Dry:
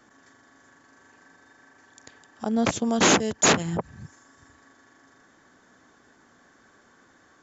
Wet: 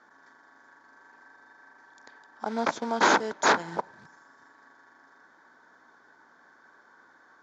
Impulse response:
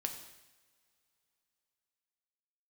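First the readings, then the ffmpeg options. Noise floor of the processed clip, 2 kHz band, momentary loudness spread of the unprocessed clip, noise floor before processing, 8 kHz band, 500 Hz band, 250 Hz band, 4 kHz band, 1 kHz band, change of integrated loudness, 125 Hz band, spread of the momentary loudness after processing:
−59 dBFS, +0.5 dB, 13 LU, −59 dBFS, can't be measured, −3.5 dB, −9.0 dB, −6.5 dB, +2.5 dB, −3.5 dB, −14.5 dB, 14 LU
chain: -filter_complex "[0:a]aeval=exprs='val(0)+0.000891*(sin(2*PI*60*n/s)+sin(2*PI*2*60*n/s)/2+sin(2*PI*3*60*n/s)/3+sin(2*PI*4*60*n/s)/4+sin(2*PI*5*60*n/s)/5)':channel_layout=same,asplit=2[link_01][link_02];[link_02]highshelf=frequency=4000:gain=-11[link_03];[1:a]atrim=start_sample=2205[link_04];[link_03][link_04]afir=irnorm=-1:irlink=0,volume=-14.5dB[link_05];[link_01][link_05]amix=inputs=2:normalize=0,acrusher=bits=4:mode=log:mix=0:aa=0.000001,highpass=320,equalizer=frequency=930:width_type=q:width=4:gain=9,equalizer=frequency=1500:width_type=q:width=4:gain=8,equalizer=frequency=2800:width_type=q:width=4:gain=-10,lowpass=frequency=5500:width=0.5412,lowpass=frequency=5500:width=1.3066,volume=-4.5dB"

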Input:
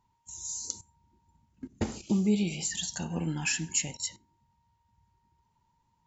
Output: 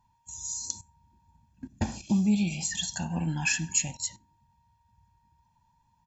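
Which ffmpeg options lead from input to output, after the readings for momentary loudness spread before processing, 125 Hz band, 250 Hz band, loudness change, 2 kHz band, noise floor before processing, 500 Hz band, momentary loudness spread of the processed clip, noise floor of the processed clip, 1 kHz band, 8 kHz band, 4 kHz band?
13 LU, +3.0 dB, +2.0 dB, +2.0 dB, +4.0 dB, −74 dBFS, −7.0 dB, 13 LU, −70 dBFS, +4.0 dB, can't be measured, +1.0 dB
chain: -af "aecho=1:1:1.2:0.72"

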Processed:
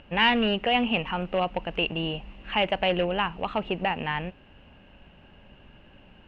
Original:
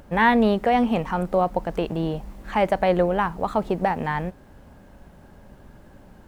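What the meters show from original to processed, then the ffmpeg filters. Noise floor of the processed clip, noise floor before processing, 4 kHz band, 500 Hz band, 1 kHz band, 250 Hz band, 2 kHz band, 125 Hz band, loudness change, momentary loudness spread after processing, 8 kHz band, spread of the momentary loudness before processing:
−54 dBFS, −49 dBFS, +10.5 dB, −5.5 dB, −5.0 dB, −6.0 dB, 0.0 dB, −5.5 dB, −3.5 dB, 9 LU, can't be measured, 9 LU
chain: -af "volume=13.5dB,asoftclip=hard,volume=-13.5dB,lowpass=frequency=2800:width_type=q:width=13,volume=-5.5dB"

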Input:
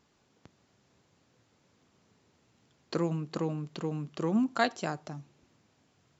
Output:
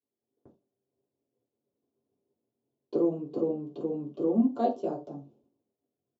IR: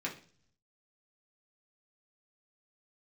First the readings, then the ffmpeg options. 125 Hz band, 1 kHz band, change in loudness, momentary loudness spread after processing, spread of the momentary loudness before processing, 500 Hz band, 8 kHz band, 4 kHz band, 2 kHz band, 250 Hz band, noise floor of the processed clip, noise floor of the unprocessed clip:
−7.5 dB, −0.5 dB, +2.5 dB, 12 LU, 11 LU, +5.0 dB, can't be measured, below −15 dB, below −20 dB, +3.5 dB, below −85 dBFS, −70 dBFS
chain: -filter_complex "[0:a]firequalizer=gain_entry='entry(210,0);entry(310,4);entry(560,5);entry(1900,-29);entry(3000,-16)':delay=0.05:min_phase=1,agate=range=-33dB:threshold=-55dB:ratio=3:detection=peak[link_01];[1:a]atrim=start_sample=2205,atrim=end_sample=6174,asetrate=61740,aresample=44100[link_02];[link_01][link_02]afir=irnorm=-1:irlink=0"

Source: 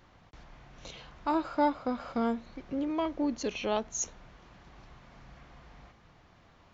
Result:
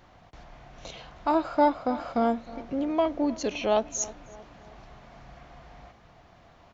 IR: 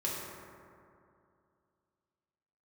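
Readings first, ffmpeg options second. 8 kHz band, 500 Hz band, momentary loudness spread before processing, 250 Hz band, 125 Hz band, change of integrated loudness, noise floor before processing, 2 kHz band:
can't be measured, +7.0 dB, 14 LU, +3.5 dB, +3.0 dB, +5.0 dB, −61 dBFS, +3.0 dB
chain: -filter_complex "[0:a]equalizer=frequency=690:width=3.5:gain=7.5,asplit=2[link_01][link_02];[link_02]adelay=313,lowpass=frequency=1800:poles=1,volume=-18.5dB,asplit=2[link_03][link_04];[link_04]adelay=313,lowpass=frequency=1800:poles=1,volume=0.52,asplit=2[link_05][link_06];[link_06]adelay=313,lowpass=frequency=1800:poles=1,volume=0.52,asplit=2[link_07][link_08];[link_08]adelay=313,lowpass=frequency=1800:poles=1,volume=0.52[link_09];[link_03][link_05][link_07][link_09]amix=inputs=4:normalize=0[link_10];[link_01][link_10]amix=inputs=2:normalize=0,volume=3dB"

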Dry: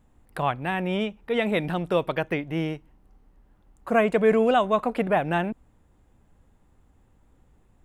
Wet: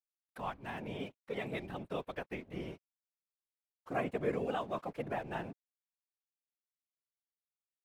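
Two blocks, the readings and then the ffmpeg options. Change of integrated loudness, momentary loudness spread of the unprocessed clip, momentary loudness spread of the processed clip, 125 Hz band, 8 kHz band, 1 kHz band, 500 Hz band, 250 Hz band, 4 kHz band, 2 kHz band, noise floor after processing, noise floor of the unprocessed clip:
−15.0 dB, 10 LU, 10 LU, −13.5 dB, can't be measured, −14.5 dB, −15.5 dB, −15.5 dB, −15.0 dB, −15.0 dB, below −85 dBFS, −61 dBFS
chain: -af "aeval=exprs='sgn(val(0))*max(abs(val(0))-0.00596,0)':channel_layout=same,afftfilt=real='hypot(re,im)*cos(2*PI*random(0))':imag='hypot(re,im)*sin(2*PI*random(1))':win_size=512:overlap=0.75,volume=-8.5dB"

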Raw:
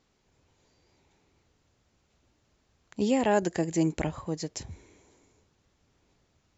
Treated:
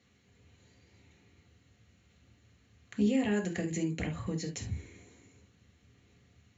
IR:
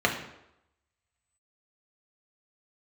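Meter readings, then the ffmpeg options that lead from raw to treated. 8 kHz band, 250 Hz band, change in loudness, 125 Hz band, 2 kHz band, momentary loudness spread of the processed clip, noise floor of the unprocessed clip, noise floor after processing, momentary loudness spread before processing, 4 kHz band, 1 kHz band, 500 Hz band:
can't be measured, −2.0 dB, −4.5 dB, −1.0 dB, −3.0 dB, 12 LU, −72 dBFS, −67 dBFS, 17 LU, −3.5 dB, −13.5 dB, −7.5 dB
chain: -filter_complex "[0:a]equalizer=frequency=730:width_type=o:width=2.4:gain=-12,acompressor=threshold=-39dB:ratio=4[link_01];[1:a]atrim=start_sample=2205,atrim=end_sample=3528[link_02];[link_01][link_02]afir=irnorm=-1:irlink=0,volume=-4dB"

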